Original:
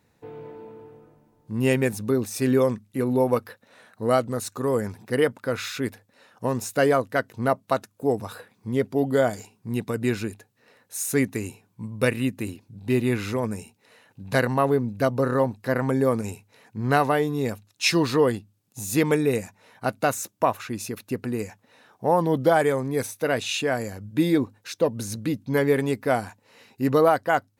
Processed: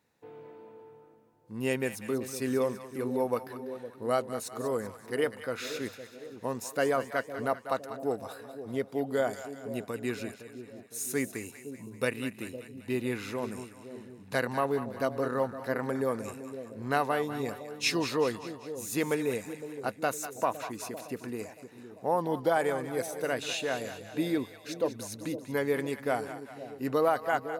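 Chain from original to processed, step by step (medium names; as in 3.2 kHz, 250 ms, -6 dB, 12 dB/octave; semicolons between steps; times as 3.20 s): bass shelf 150 Hz -12 dB; two-band feedback delay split 640 Hz, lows 511 ms, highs 194 ms, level -11 dB; trim -6.5 dB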